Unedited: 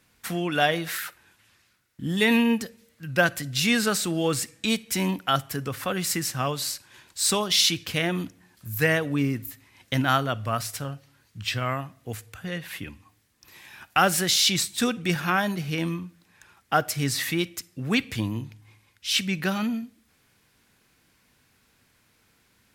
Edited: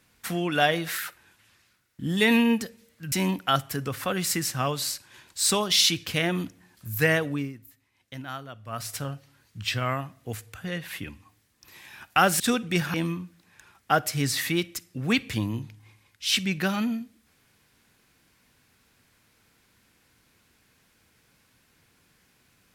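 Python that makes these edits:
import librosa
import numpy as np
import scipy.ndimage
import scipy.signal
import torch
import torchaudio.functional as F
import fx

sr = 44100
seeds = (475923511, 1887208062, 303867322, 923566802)

y = fx.edit(x, sr, fx.cut(start_s=3.12, length_s=1.8),
    fx.fade_down_up(start_s=9.02, length_s=1.74, db=-14.5, fade_s=0.31),
    fx.cut(start_s=14.2, length_s=0.54),
    fx.cut(start_s=15.28, length_s=0.48), tone=tone)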